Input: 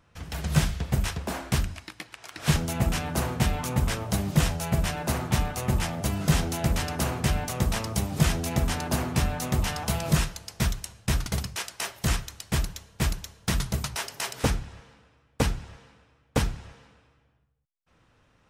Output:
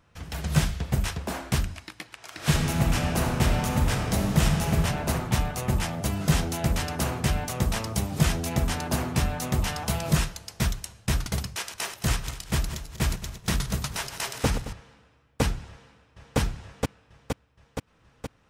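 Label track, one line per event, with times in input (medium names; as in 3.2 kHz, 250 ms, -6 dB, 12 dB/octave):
2.220000	4.770000	reverb throw, RT60 3 s, DRR 1.5 dB
11.540000	14.730000	backward echo that repeats 110 ms, feedback 58%, level -10.5 dB
15.690000	16.380000	echo throw 470 ms, feedback 70%, level -2 dB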